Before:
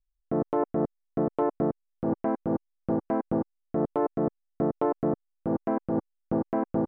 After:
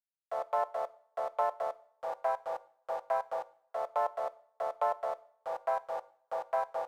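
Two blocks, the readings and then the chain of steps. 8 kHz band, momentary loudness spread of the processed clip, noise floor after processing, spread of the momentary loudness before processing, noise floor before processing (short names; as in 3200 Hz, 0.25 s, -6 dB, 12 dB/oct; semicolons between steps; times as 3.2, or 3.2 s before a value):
n/a, 8 LU, -82 dBFS, 5 LU, -79 dBFS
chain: steep high-pass 580 Hz 48 dB/oct; crossover distortion -54 dBFS; two-slope reverb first 0.56 s, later 1.6 s, from -24 dB, DRR 15.5 dB; gain +1.5 dB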